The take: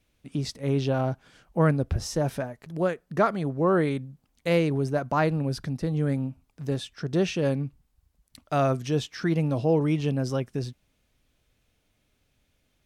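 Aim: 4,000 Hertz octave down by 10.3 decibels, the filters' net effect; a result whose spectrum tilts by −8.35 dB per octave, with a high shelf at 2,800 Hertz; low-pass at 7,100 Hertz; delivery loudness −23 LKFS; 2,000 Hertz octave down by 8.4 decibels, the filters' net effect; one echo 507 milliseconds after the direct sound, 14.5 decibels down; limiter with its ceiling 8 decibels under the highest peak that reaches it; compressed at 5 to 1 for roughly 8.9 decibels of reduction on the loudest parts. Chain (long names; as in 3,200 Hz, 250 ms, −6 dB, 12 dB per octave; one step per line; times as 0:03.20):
low-pass filter 7,100 Hz
parametric band 2,000 Hz −8.5 dB
high-shelf EQ 2,800 Hz −4.5 dB
parametric band 4,000 Hz −6.5 dB
downward compressor 5 to 1, threshold −28 dBFS
brickwall limiter −27.5 dBFS
single-tap delay 507 ms −14.5 dB
level +14 dB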